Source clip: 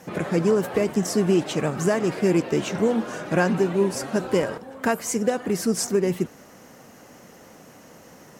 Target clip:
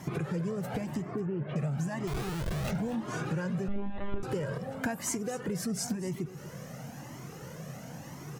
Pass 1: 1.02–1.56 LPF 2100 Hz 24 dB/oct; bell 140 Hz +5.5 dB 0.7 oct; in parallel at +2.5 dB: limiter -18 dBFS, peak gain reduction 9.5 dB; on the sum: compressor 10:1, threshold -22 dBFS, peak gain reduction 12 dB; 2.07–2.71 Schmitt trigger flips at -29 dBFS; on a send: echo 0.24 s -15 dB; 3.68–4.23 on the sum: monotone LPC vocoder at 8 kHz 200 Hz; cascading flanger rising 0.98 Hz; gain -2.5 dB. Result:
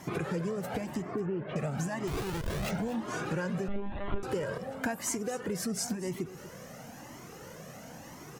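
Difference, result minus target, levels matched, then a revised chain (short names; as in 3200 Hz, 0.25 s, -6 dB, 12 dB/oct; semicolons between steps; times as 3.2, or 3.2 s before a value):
125 Hz band -4.0 dB
1.02–1.56 LPF 2100 Hz 24 dB/oct; bell 140 Hz +16 dB 0.7 oct; in parallel at +2.5 dB: limiter -18 dBFS, peak gain reduction 13.5 dB; on the sum: compressor 10:1, threshold -22 dBFS, peak gain reduction 14 dB; 2.07–2.71 Schmitt trigger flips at -29 dBFS; on a send: echo 0.24 s -15 dB; 3.68–4.23 on the sum: monotone LPC vocoder at 8 kHz 200 Hz; cascading flanger rising 0.98 Hz; gain -2.5 dB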